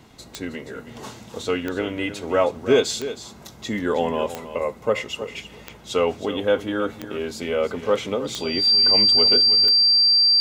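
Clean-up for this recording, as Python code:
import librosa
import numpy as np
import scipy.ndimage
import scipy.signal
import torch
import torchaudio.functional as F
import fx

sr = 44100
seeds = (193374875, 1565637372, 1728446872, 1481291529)

y = fx.fix_declick_ar(x, sr, threshold=10.0)
y = fx.notch(y, sr, hz=4700.0, q=30.0)
y = fx.fix_echo_inverse(y, sr, delay_ms=318, level_db=-12.5)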